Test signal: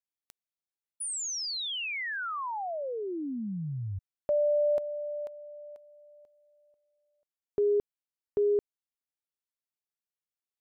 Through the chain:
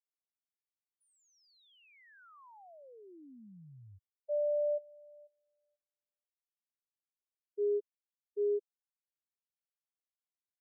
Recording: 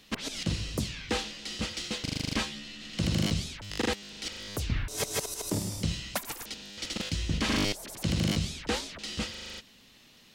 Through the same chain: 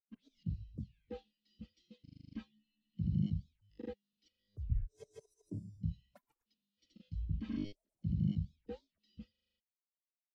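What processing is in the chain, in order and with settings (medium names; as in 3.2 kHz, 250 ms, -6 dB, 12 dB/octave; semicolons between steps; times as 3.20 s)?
spectral contrast expander 2.5:1; trim -5 dB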